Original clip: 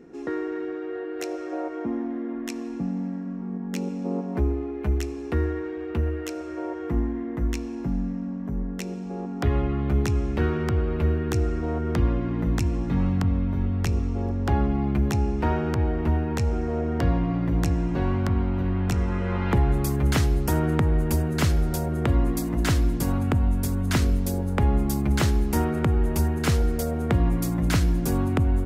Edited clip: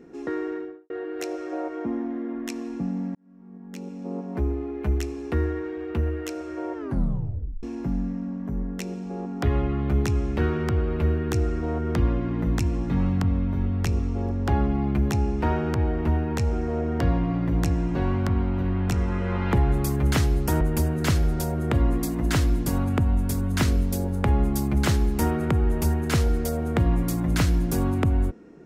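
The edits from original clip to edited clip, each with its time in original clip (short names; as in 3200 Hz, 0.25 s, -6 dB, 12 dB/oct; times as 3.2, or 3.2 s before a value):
0.48–0.9 studio fade out
3.15–4.75 fade in
6.75 tape stop 0.88 s
20.61–20.95 cut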